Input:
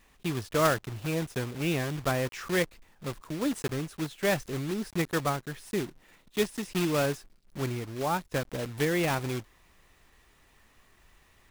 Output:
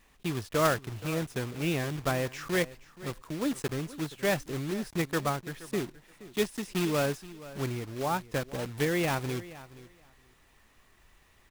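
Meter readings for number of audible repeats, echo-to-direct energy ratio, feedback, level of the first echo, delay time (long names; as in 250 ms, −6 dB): 2, −17.5 dB, 16%, −17.5 dB, 474 ms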